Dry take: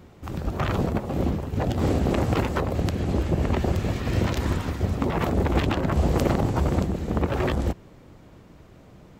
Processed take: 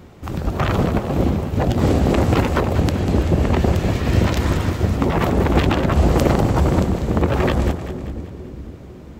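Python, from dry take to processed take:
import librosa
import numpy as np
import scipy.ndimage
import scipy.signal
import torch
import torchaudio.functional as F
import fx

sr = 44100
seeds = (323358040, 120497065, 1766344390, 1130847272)

y = fx.echo_split(x, sr, split_hz=450.0, low_ms=499, high_ms=194, feedback_pct=52, wet_db=-10.0)
y = y * 10.0 ** (6.0 / 20.0)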